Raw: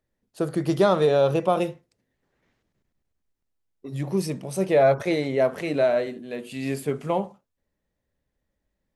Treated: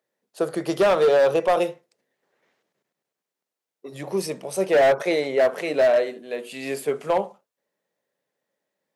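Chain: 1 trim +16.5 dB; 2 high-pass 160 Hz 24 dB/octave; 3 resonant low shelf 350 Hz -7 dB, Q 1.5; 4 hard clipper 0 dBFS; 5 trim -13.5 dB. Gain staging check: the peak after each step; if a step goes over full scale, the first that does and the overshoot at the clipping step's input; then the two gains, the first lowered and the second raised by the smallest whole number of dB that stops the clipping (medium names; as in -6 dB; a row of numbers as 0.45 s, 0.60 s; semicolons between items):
+9.0 dBFS, +9.0 dBFS, +9.0 dBFS, 0.0 dBFS, -13.5 dBFS; step 1, 9.0 dB; step 1 +7.5 dB, step 5 -4.5 dB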